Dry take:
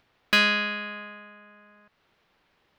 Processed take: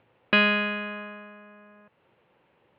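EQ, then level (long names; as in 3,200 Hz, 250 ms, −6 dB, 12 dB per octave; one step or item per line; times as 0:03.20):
high-frequency loss of the air 90 metres
loudspeaker in its box 100–3,300 Hz, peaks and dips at 120 Hz +5 dB, 360 Hz +4 dB, 520 Hz +10 dB, 890 Hz +6 dB, 2,700 Hz +4 dB
low-shelf EQ 320 Hz +7.5 dB
−1.0 dB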